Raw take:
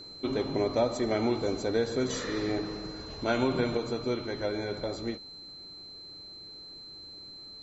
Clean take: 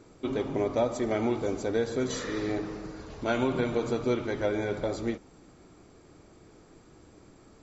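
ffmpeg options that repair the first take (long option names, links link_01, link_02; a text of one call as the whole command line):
ffmpeg -i in.wav -af "bandreject=frequency=4100:width=30,asetnsamples=nb_out_samples=441:pad=0,asendcmd='3.77 volume volume 3.5dB',volume=0dB" out.wav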